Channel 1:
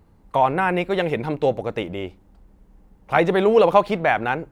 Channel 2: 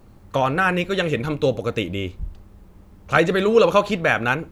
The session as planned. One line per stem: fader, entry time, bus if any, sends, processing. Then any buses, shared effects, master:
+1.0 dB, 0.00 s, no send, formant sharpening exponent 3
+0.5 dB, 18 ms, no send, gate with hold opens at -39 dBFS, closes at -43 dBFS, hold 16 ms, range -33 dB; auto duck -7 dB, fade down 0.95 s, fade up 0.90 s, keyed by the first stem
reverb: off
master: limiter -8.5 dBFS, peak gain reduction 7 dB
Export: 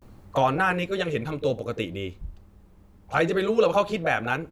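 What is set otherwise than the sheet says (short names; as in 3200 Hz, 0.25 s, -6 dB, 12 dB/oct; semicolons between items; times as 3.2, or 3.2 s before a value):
stem 1 +1.0 dB -> -11.0 dB; stem 2: missing gate with hold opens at -39 dBFS, closes at -43 dBFS, hold 16 ms, range -33 dB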